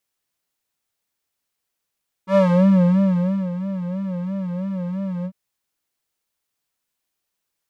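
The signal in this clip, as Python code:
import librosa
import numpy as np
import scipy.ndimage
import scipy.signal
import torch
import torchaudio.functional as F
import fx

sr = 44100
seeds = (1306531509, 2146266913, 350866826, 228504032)

y = fx.sub_patch_vibrato(sr, seeds[0], note=54, wave='square', wave2='saw', interval_st=19, detune_cents=16, level2_db=-4.5, sub_db=-27.5, noise_db=-21.5, kind='bandpass', cutoff_hz=120.0, q=1.1, env_oct=2.5, env_decay_s=0.41, env_sustain_pct=40, attack_ms=85.0, decay_s=1.15, sustain_db=-14.5, release_s=0.07, note_s=2.98, lfo_hz=3.0, vibrato_cents=100)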